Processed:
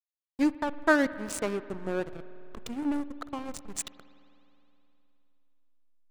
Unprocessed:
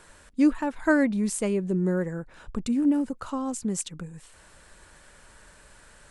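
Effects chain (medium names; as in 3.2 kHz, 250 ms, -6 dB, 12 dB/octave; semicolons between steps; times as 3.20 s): frequency weighting A; hysteresis with a dead band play -26.5 dBFS; spring tank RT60 3.1 s, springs 52 ms, chirp 30 ms, DRR 15 dB; trim +2.5 dB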